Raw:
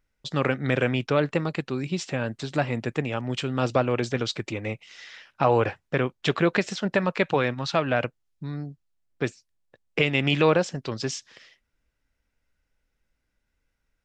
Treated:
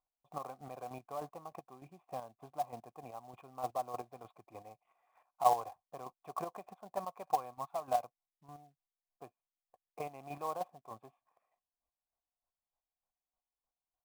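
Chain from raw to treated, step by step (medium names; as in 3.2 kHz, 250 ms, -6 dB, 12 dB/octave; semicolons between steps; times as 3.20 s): square tremolo 3.3 Hz, depth 60%, duty 25%; cascade formant filter a; short-mantissa float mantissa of 2-bit; trim +4 dB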